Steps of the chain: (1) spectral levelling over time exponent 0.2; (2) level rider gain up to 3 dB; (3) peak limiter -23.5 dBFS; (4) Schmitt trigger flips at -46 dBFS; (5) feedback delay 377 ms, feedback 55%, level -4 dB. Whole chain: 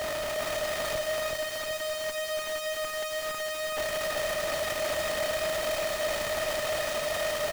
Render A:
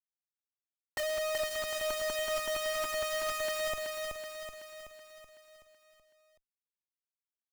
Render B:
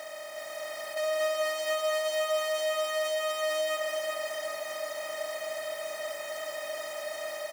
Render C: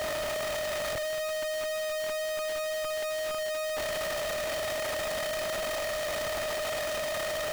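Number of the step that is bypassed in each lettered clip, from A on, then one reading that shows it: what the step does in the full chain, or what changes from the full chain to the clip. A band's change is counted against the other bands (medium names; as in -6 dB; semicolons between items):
1, 125 Hz band -7.5 dB; 4, distortion 0 dB; 5, echo-to-direct -2.5 dB to none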